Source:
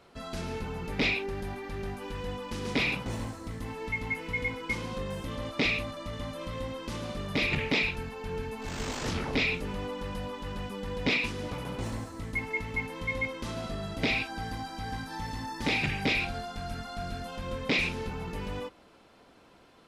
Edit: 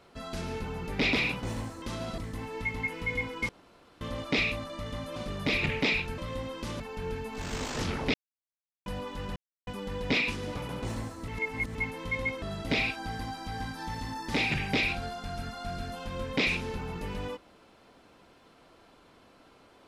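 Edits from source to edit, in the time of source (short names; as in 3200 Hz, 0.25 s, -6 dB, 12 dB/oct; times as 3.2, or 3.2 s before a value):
1.13–2.76 cut
4.76–5.28 room tone
6.43–7.05 move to 8.07
9.41–10.13 mute
10.63 insert silence 0.31 s
12.24–12.71 reverse
13.38–13.74 move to 3.45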